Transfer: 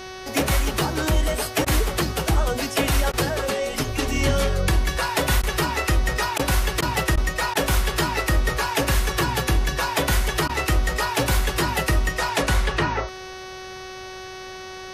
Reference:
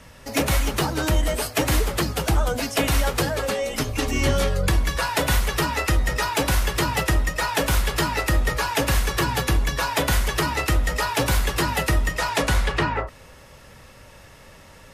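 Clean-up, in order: de-hum 374.5 Hz, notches 17; interpolate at 1.65/3.12/5.42/6.38/6.81/7.16/7.54/10.48, 12 ms

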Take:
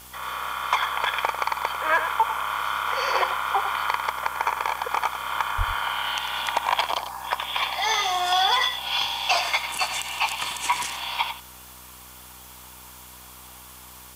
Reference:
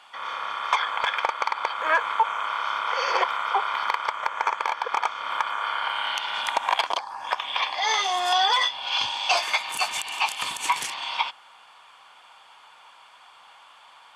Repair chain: de-hum 62.5 Hz, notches 11; 5.57–5.69 HPF 140 Hz 24 dB/oct; noise print and reduce 7 dB; inverse comb 97 ms -10 dB

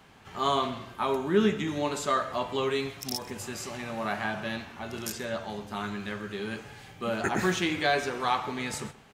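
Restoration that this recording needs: de-click; inverse comb 0.13 s -20 dB

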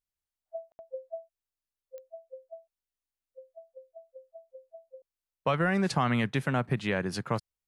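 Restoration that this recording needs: de-click; room tone fill 0.72–0.79

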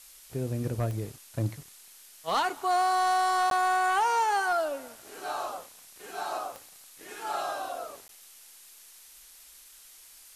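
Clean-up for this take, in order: clip repair -20 dBFS; de-click; interpolate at 3.5/8.08, 12 ms; denoiser 22 dB, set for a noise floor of -53 dBFS

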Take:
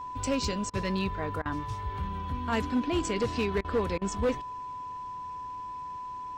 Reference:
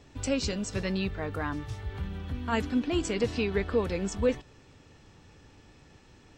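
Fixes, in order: clip repair -21.5 dBFS; notch 1000 Hz, Q 30; interpolate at 0.7/1.42/3.61/3.98, 34 ms

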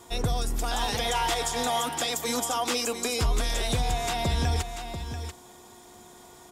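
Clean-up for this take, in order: de-hum 360.3 Hz, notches 4; inverse comb 0.688 s -9 dB

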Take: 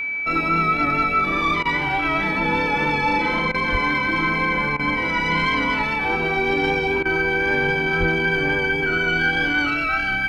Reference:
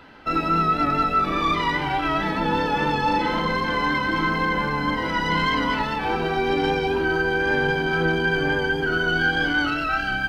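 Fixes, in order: notch 2300 Hz, Q 30; 3.71–3.83 HPF 140 Hz 24 dB/oct; 7.99–8.11 HPF 140 Hz 24 dB/oct; interpolate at 1.63/3.52/4.77/7.03, 22 ms

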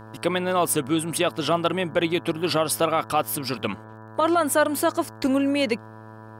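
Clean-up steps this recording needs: de-click; de-hum 109.8 Hz, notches 16; notch 980 Hz, Q 30

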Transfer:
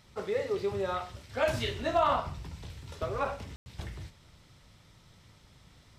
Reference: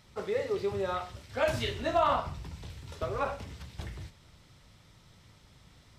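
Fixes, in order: room tone fill 3.56–3.66

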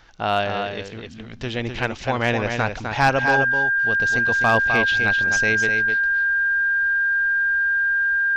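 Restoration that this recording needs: clip repair -8.5 dBFS; notch 1600 Hz, Q 30; inverse comb 0.255 s -6 dB

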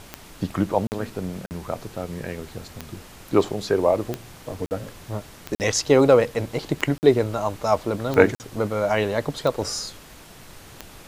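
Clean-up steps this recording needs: de-click; interpolate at 0.87/1.46/4.66/5.55/6.98/8.35, 49 ms; noise print and reduce 22 dB

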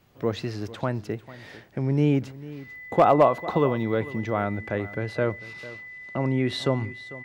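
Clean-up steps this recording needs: clip repair -8 dBFS; notch 2000 Hz, Q 30; inverse comb 0.447 s -17.5 dB

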